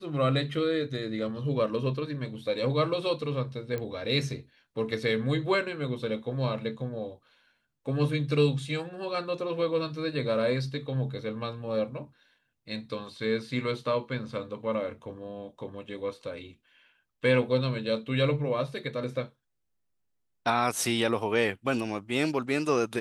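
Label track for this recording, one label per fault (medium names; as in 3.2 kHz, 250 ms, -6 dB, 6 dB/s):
3.780000	3.780000	pop -21 dBFS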